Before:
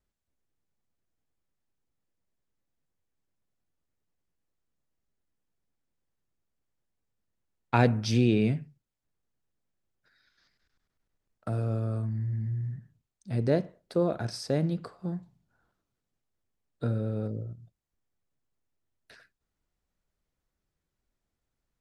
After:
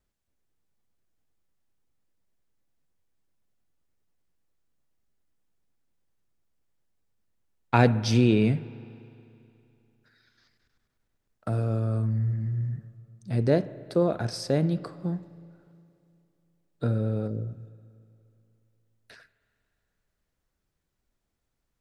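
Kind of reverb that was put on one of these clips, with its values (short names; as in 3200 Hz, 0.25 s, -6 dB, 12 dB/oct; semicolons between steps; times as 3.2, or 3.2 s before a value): spring tank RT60 2.8 s, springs 36/59 ms, chirp 40 ms, DRR 17 dB; gain +3 dB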